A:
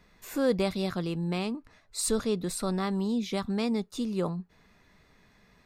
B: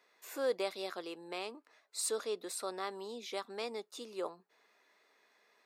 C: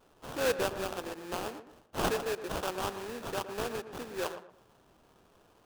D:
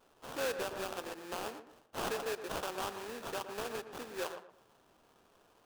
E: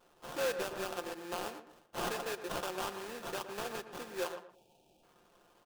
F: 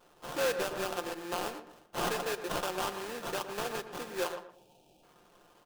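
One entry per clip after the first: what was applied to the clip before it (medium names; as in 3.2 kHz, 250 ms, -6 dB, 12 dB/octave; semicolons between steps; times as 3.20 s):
high-pass 380 Hz 24 dB/octave; trim -5.5 dB
dynamic bell 350 Hz, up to -4 dB, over -47 dBFS, Q 0.79; sample-rate reducer 2.1 kHz, jitter 20%; tape echo 116 ms, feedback 30%, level -9 dB, low-pass 1.7 kHz; trim +6.5 dB
bass shelf 280 Hz -7.5 dB; on a send at -19.5 dB: reverberation, pre-delay 4 ms; on the sum: peak limiter -25 dBFS, peak gain reduction 7 dB; trim -1.5 dB
time-frequency box 4.54–5.03 s, 930–2300 Hz -22 dB; comb 5.7 ms, depth 40%
simulated room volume 3700 m³, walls furnished, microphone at 0.43 m; trim +4 dB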